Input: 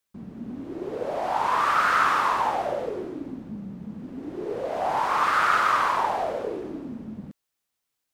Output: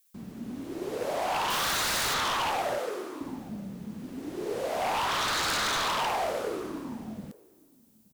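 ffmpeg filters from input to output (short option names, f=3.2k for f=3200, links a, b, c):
-filter_complex "[0:a]acrossover=split=3700[a][b];[b]acompressor=threshold=-54dB:ratio=4:attack=1:release=60[c];[a][c]amix=inputs=2:normalize=0,asettb=1/sr,asplit=3[d][e][f];[d]atrim=end=1.504[g];[e]atrim=start=1.5:end=2.14,asetpts=PTS-STARTPTS,afade=t=in:d=0.004:c=qsin,afade=t=out:st=0.636:d=0.004:c=qsin,aemphasis=mode=production:type=50kf[h];[f]atrim=start=2.136[i];[g][h]acrossfade=d=0.004:c1=hsin:c2=qsin[j];[j][i]acrossfade=d=0.004:c1=qsin:c2=hsin,asettb=1/sr,asplit=3[k][l][m];[k]atrim=end=2.784[n];[l]atrim=start=2.78:end=3.21,asetpts=PTS-STARTPTS,afade=t=in:d=0.004:c=qsin,afade=t=out:st=0.426:d=0.004:c=qsin,highpass=350[o];[m]atrim=start=3.206[p];[n][o]acrossfade=d=0.004:c1=hsin:c2=qsin[q];[q][p]acrossfade=d=0.004:c1=qsin:c2=hsin,asplit=2[r][s];[s]adelay=874.6,volume=-24dB,highshelf=f=4k:g=-19.7[t];[r][t]amix=inputs=2:normalize=0,crystalizer=i=5:c=0,aeval=exprs='0.0891*(abs(mod(val(0)/0.0891+3,4)-2)-1)':c=same,volume=-2.5dB"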